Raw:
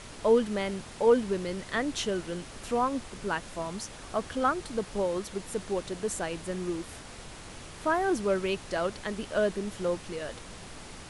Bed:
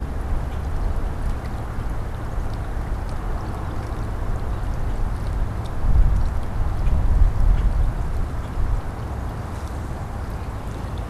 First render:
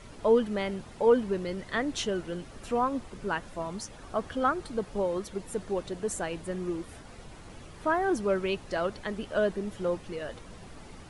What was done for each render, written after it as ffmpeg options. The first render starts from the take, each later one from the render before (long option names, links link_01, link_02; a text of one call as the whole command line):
ffmpeg -i in.wav -af "afftdn=noise_reduction=9:noise_floor=-46" out.wav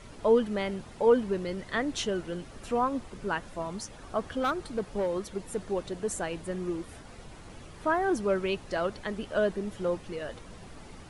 ffmpeg -i in.wav -filter_complex "[0:a]asettb=1/sr,asplit=3[link_01][link_02][link_03];[link_01]atrim=end=4.424[link_04];[link_02]atrim=start=4.42:end=5.69,asetpts=PTS-STARTPTS,afade=type=in:duration=0.004:curve=qsin,afade=type=out:start_time=1.266:duration=0.004:curve=qsin,asoftclip=type=hard:threshold=-23.5dB[link_05];[link_03]atrim=start=5.686[link_06];[link_04][link_05]acrossfade=duration=0.004:curve1=hsin:curve2=qsin[link_07];[link_07][link_06]acrossfade=duration=0.004:curve1=qsin:curve2=hsin" out.wav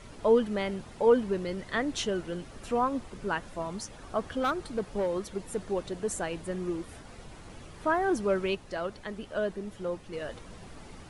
ffmpeg -i in.wav -filter_complex "[0:a]asplit=3[link_01][link_02][link_03];[link_01]atrim=end=8.552[link_04];[link_02]atrim=start=8.548:end=10.132,asetpts=PTS-STARTPTS,volume=-4dB[link_05];[link_03]atrim=start=10.128[link_06];[link_04][link_05]acrossfade=duration=0.004:curve1=hsin:curve2=hsin[link_07];[link_07][link_06]acrossfade=duration=0.004:curve1=hsin:curve2=hsin" out.wav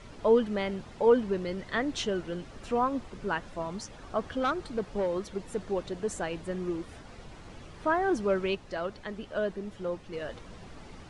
ffmpeg -i in.wav -af "lowpass=6800" out.wav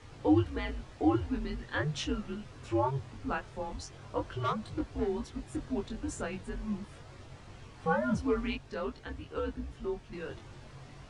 ffmpeg -i in.wav -af "flanger=delay=20:depth=2.4:speed=0.43,afreqshift=-140" out.wav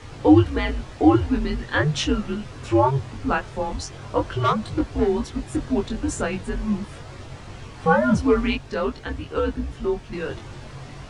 ffmpeg -i in.wav -af "volume=11.5dB" out.wav